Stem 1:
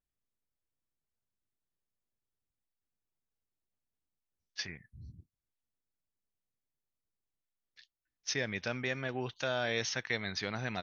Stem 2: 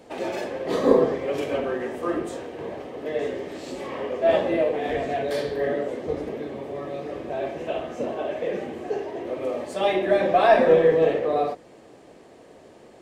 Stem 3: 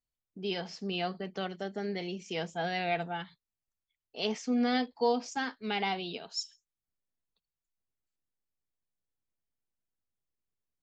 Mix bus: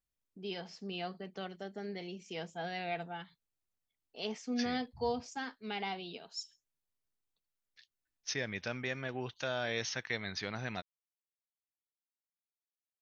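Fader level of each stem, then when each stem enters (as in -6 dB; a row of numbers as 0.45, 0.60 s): -2.5 dB, off, -6.5 dB; 0.00 s, off, 0.00 s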